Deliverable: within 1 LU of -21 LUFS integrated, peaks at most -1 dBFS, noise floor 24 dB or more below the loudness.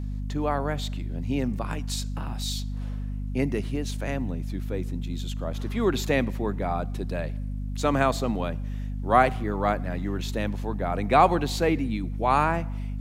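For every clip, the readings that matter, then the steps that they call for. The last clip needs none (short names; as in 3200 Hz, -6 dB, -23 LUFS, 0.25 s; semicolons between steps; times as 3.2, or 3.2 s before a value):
hum 50 Hz; harmonics up to 250 Hz; hum level -28 dBFS; loudness -27.5 LUFS; peak -5.0 dBFS; loudness target -21.0 LUFS
-> de-hum 50 Hz, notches 5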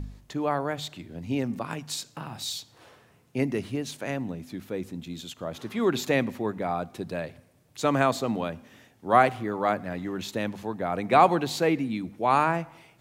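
hum none; loudness -28.0 LUFS; peak -5.5 dBFS; loudness target -21.0 LUFS
-> gain +7 dB; limiter -1 dBFS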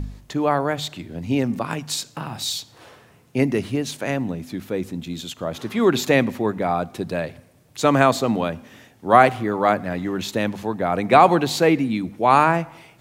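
loudness -21.0 LUFS; peak -1.0 dBFS; noise floor -53 dBFS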